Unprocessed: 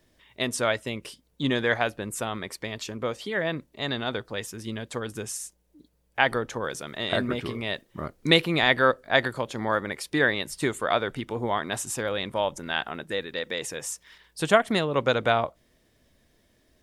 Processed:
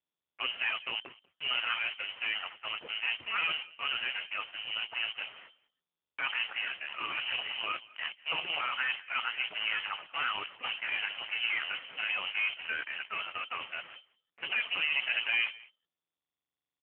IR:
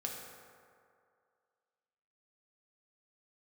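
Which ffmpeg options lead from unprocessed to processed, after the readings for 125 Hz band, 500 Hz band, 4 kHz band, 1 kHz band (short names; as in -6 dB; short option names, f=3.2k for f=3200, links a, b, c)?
under -30 dB, -25.0 dB, -2.0 dB, -10.0 dB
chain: -filter_complex "[0:a]afftdn=nr=23:nf=-48,agate=range=-33dB:threshold=-43dB:ratio=3:detection=peak,bandreject=f=50:t=h:w=6,bandreject=f=100:t=h:w=6,bandreject=f=150:t=h:w=6,bandreject=f=200:t=h:w=6,bandreject=f=250:t=h:w=6,bandreject=f=300:t=h:w=6,bandreject=f=350:t=h:w=6,bandreject=f=400:t=h:w=6,acontrast=26,alimiter=limit=-11dB:level=0:latency=1:release=104,acontrast=88,aeval=exprs='(tanh(7.08*val(0)+0.3)-tanh(0.3))/7.08':c=same,acrusher=bits=4:mix=0:aa=0.000001,asplit=2[a][b];[b]aecho=0:1:192:0.0794[c];[a][c]amix=inputs=2:normalize=0,lowpass=f=2.6k:t=q:w=0.5098,lowpass=f=2.6k:t=q:w=0.6013,lowpass=f=2.6k:t=q:w=0.9,lowpass=f=2.6k:t=q:w=2.563,afreqshift=-3100,volume=-6.5dB" -ar 8000 -c:a libopencore_amrnb -b:a 5150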